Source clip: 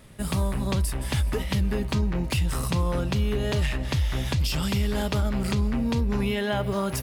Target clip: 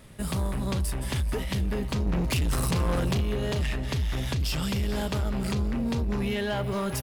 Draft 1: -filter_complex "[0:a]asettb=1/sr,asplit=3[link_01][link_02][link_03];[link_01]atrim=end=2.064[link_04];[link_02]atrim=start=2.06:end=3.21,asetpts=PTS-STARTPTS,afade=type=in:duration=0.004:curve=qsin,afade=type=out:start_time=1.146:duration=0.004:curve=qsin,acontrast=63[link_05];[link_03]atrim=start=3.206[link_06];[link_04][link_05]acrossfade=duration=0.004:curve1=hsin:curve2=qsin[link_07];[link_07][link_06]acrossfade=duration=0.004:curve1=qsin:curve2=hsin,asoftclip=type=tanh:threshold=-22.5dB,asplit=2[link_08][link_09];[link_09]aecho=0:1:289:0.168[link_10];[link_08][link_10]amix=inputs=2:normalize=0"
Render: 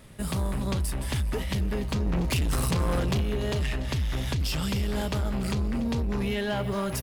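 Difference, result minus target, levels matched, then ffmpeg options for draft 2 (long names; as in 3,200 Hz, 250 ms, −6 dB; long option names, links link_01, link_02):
echo 150 ms early
-filter_complex "[0:a]asettb=1/sr,asplit=3[link_01][link_02][link_03];[link_01]atrim=end=2.064[link_04];[link_02]atrim=start=2.06:end=3.21,asetpts=PTS-STARTPTS,afade=type=in:duration=0.004:curve=qsin,afade=type=out:start_time=1.146:duration=0.004:curve=qsin,acontrast=63[link_05];[link_03]atrim=start=3.206[link_06];[link_04][link_05]acrossfade=duration=0.004:curve1=hsin:curve2=qsin[link_07];[link_07][link_06]acrossfade=duration=0.004:curve1=qsin:curve2=hsin,asoftclip=type=tanh:threshold=-22.5dB,asplit=2[link_08][link_09];[link_09]aecho=0:1:439:0.168[link_10];[link_08][link_10]amix=inputs=2:normalize=0"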